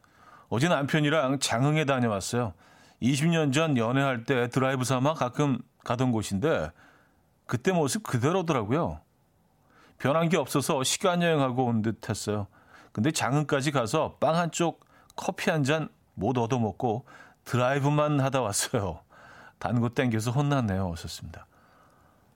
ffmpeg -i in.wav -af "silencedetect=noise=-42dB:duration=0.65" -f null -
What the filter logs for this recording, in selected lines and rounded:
silence_start: 6.70
silence_end: 7.49 | silence_duration: 0.80
silence_start: 8.98
silence_end: 10.00 | silence_duration: 1.02
silence_start: 21.43
silence_end: 22.35 | silence_duration: 0.93